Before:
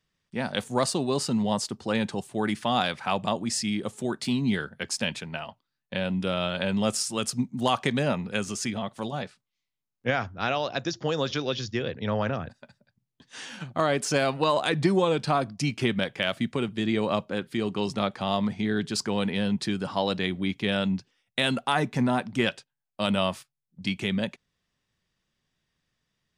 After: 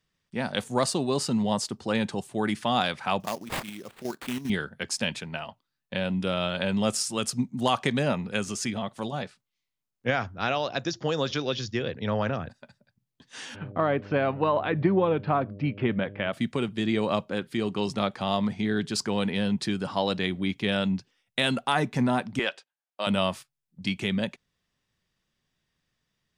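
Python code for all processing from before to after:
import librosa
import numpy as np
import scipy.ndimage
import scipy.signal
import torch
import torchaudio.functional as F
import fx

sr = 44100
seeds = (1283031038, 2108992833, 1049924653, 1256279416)

y = fx.chain(x, sr, fx.low_shelf(hz=190.0, db=-10.0),
    fx.level_steps(step_db=10),
    fx.sample_hold(seeds[0], rate_hz=5800.0, jitter_pct=20), at=(3.2, 4.5))
y = fx.bessel_lowpass(y, sr, hz=1900.0, order=6, at=(13.54, 16.32), fade=0.02)
y = fx.dmg_buzz(y, sr, base_hz=100.0, harmonics=6, level_db=-44.0, tilt_db=-4, odd_only=False, at=(13.54, 16.32), fade=0.02)
y = fx.chain(y, sr, fx.highpass(hz=460.0, slope=12),
    fx.high_shelf(hz=6500.0, db=-10.5), at=(22.39, 23.07))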